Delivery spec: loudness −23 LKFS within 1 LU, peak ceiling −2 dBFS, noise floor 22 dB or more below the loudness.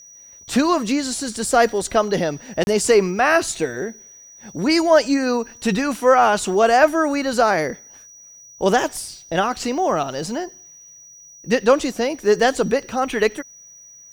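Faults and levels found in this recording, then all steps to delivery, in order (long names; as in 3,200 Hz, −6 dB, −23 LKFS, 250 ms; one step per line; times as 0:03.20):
number of dropouts 1; longest dropout 31 ms; interfering tone 5,800 Hz; level of the tone −42 dBFS; integrated loudness −19.0 LKFS; sample peak −3.0 dBFS; target loudness −23.0 LKFS
→ repair the gap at 0:02.64, 31 ms
notch filter 5,800 Hz, Q 30
level −4 dB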